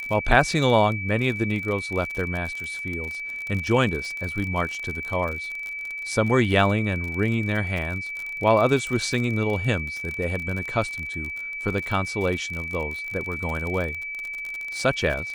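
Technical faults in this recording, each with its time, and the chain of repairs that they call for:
crackle 43/s -28 dBFS
tone 2300 Hz -30 dBFS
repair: de-click; notch 2300 Hz, Q 30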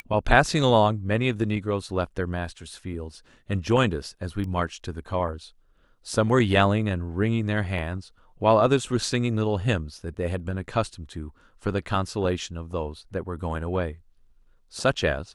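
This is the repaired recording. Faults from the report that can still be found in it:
none

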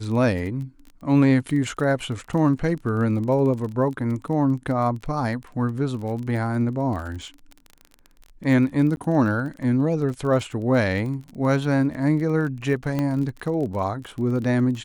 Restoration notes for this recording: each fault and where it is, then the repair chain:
crackle 24/s -31 dBFS
8.96–8.97 gap 11 ms
12.99 pop -13 dBFS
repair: de-click; interpolate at 8.96, 11 ms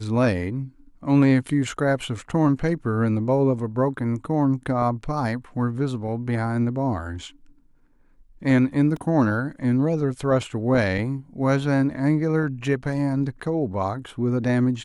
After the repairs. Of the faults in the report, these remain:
none

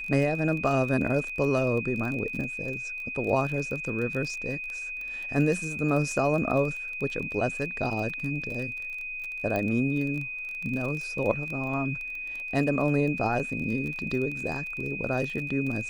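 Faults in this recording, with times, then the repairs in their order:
crackle 24/s -32 dBFS
tone 2500 Hz -33 dBFS
9.56 pop -17 dBFS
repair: de-click; notch 2500 Hz, Q 30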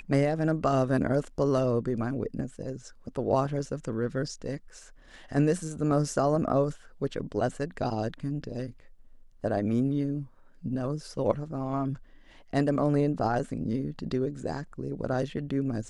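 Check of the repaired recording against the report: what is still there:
none

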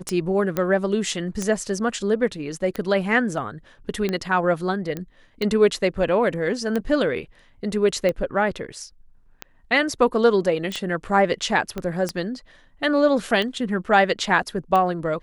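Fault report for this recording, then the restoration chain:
tick 45 rpm -12 dBFS
0.57 pop -10 dBFS
4.97 pop -16 dBFS
10.72 pop
11.78 pop -15 dBFS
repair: de-click

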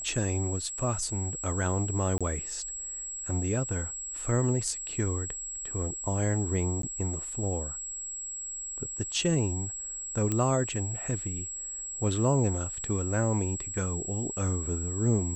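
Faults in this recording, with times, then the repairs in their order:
tone 7700 Hz -35 dBFS
2.18–2.21 gap 26 ms
6.82–6.83 gap 13 ms
10.32 pop -15 dBFS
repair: de-click; notch 7700 Hz, Q 30; interpolate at 2.18, 26 ms; interpolate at 6.82, 13 ms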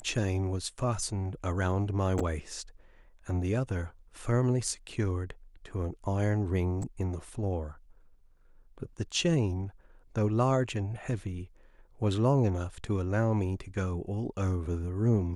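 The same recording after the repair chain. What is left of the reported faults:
none

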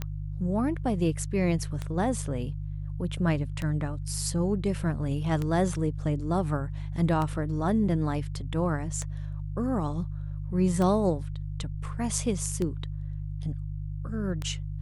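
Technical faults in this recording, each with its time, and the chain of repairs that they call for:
hum 50 Hz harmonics 3 -34 dBFS
tick 33 1/3 rpm -18 dBFS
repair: de-click; de-hum 50 Hz, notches 3

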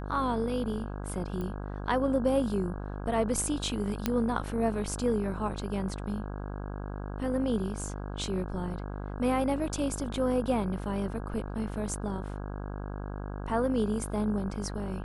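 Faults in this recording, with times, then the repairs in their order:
buzz 50 Hz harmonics 33 -37 dBFS
1.41 pop -25 dBFS
4.06 pop -12 dBFS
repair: de-click; de-hum 50 Hz, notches 33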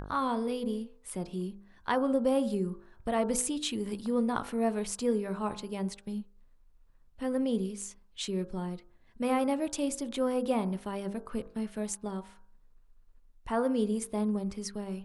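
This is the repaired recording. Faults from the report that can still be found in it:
none

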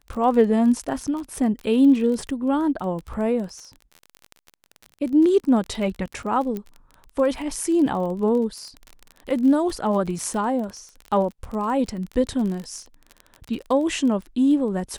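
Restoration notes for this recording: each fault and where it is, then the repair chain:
crackle 25/s -29 dBFS
6.57 pop -18 dBFS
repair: de-click

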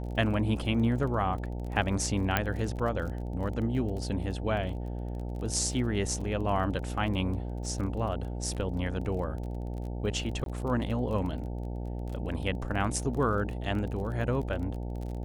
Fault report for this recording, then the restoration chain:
buzz 60 Hz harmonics 15 -35 dBFS
crackle 27/s -37 dBFS
2.37 pop -10 dBFS
10.44–10.46 gap 22 ms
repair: de-click; de-hum 60 Hz, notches 15; interpolate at 10.44, 22 ms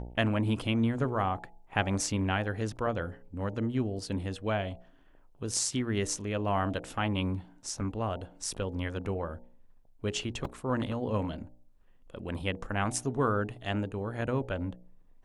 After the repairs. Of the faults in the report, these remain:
none

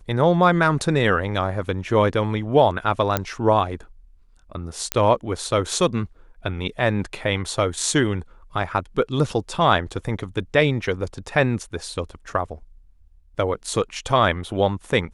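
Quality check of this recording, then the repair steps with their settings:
3.17 pop -5 dBFS
4.92 pop -3 dBFS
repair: de-click

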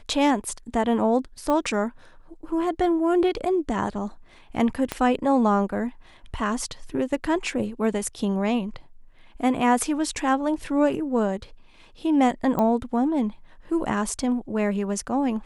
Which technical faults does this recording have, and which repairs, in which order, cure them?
1.5 pop -14 dBFS
4.92 pop -11 dBFS
12.59 pop -13 dBFS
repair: de-click

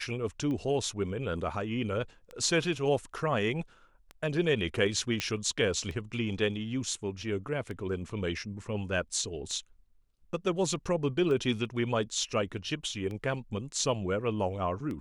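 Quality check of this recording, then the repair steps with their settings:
tick 33 1/3 rpm -27 dBFS
5.2 pop -15 dBFS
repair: de-click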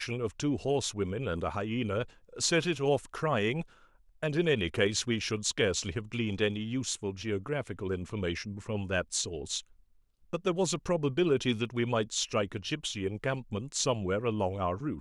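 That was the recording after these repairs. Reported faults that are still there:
none

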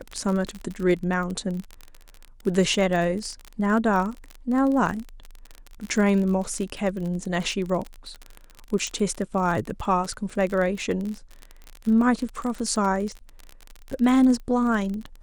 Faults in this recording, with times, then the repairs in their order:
crackle 34/s -28 dBFS
8.87 pop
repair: de-click

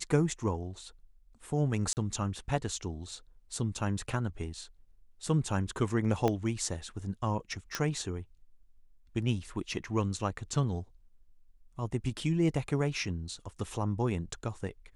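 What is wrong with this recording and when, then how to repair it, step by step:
1.93–1.97 gap 39 ms
6.28 pop -16 dBFS
7.75 pop -15 dBFS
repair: de-click; interpolate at 1.93, 39 ms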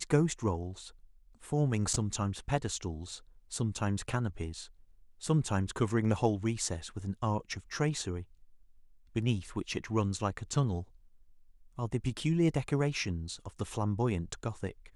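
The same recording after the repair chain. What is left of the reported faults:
6.28 pop

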